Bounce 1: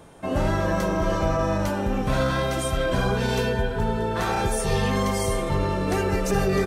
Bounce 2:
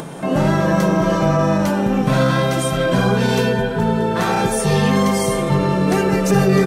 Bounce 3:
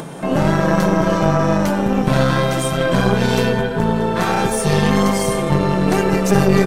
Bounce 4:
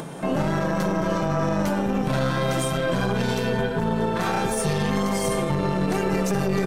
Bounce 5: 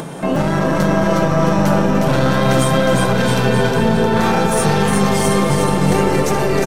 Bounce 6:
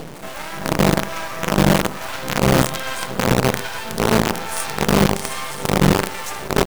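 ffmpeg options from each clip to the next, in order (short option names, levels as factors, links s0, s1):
-af "lowshelf=f=110:t=q:w=3:g=-10.5,acompressor=mode=upward:threshold=0.0398:ratio=2.5,volume=2"
-af "aeval=exprs='0.708*(cos(1*acos(clip(val(0)/0.708,-1,1)))-cos(1*PI/2))+0.141*(cos(4*acos(clip(val(0)/0.708,-1,1)))-cos(4*PI/2))+0.0316*(cos(6*acos(clip(val(0)/0.708,-1,1)))-cos(6*PI/2))':c=same"
-af "alimiter=limit=0.355:level=0:latency=1:release=39,volume=0.631"
-af "aecho=1:1:360|666|926.1|1147|1335:0.631|0.398|0.251|0.158|0.1,volume=2.11"
-filter_complex "[0:a]acrossover=split=740[s0][s1];[s0]aeval=exprs='val(0)*(1-1/2+1/2*cos(2*PI*1.2*n/s))':c=same[s2];[s1]aeval=exprs='val(0)*(1-1/2-1/2*cos(2*PI*1.2*n/s))':c=same[s3];[s2][s3]amix=inputs=2:normalize=0,acrusher=bits=3:dc=4:mix=0:aa=0.000001"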